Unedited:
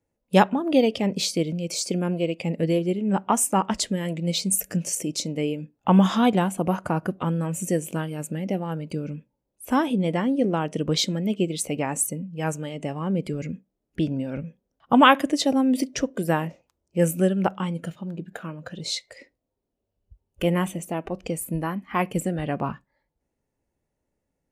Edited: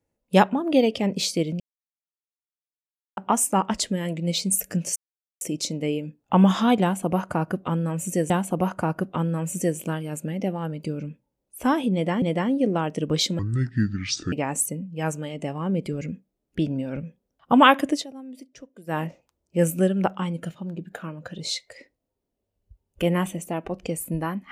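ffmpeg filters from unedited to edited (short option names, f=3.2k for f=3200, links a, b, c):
-filter_complex "[0:a]asplit=10[a][b][c][d][e][f][g][h][i][j];[a]atrim=end=1.6,asetpts=PTS-STARTPTS,afade=t=out:st=1.596:d=0.004:c=hsin[k];[b]atrim=start=1.6:end=3.17,asetpts=PTS-STARTPTS,volume=0[l];[c]atrim=start=3.17:end=4.96,asetpts=PTS-STARTPTS,afade=t=in:d=0.004:c=hsin,afade=t=out:st=1.786:d=0.004:c=hsin,apad=pad_dur=0.45[m];[d]atrim=start=4.96:end=7.852,asetpts=PTS-STARTPTS,afade=t=in:d=0.004:c=hsin[n];[e]atrim=start=6.368:end=10.292[o];[f]atrim=start=9.998:end=11.174[p];[g]atrim=start=11.17:end=11.73,asetpts=PTS-STARTPTS,asetrate=26460,aresample=44100[q];[h]atrim=start=11.726:end=15.47,asetpts=PTS-STARTPTS,afade=t=out:st=3.614:d=0.13:silence=0.112202[r];[i]atrim=start=15.47:end=16.27,asetpts=PTS-STARTPTS,volume=-19dB[s];[j]atrim=start=16.27,asetpts=PTS-STARTPTS,afade=t=in:d=0.13:silence=0.112202[t];[k][l][m][n]concat=n=4:v=0:a=1[u];[u][o]acrossfade=d=0.004:c1=hsin:c2=hsin[v];[v][p]acrossfade=d=0.004:c1=hsin:c2=hsin[w];[w][q]acrossfade=d=0.004:c1=hsin:c2=hsin[x];[r][s][t]concat=n=3:v=0:a=1[y];[x][y]acrossfade=d=0.004:c1=hsin:c2=hsin"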